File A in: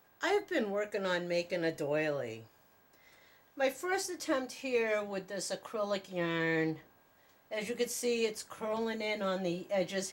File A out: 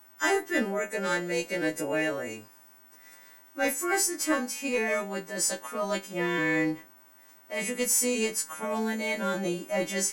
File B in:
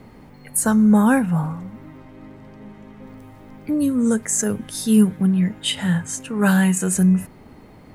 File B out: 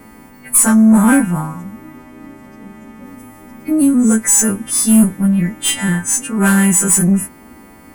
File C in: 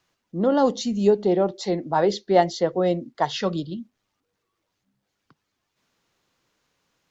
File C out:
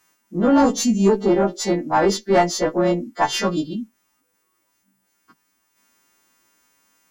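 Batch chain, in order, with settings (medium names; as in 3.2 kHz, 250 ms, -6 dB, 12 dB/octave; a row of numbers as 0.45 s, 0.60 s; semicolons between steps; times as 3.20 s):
partials quantised in pitch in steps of 2 st; valve stage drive 13 dB, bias 0.3; ten-band graphic EQ 125 Hz -11 dB, 250 Hz +6 dB, 500 Hz -6 dB, 4 kHz -11 dB; trim +8 dB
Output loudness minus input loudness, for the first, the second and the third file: +6.0 LU, +6.5 LU, +3.0 LU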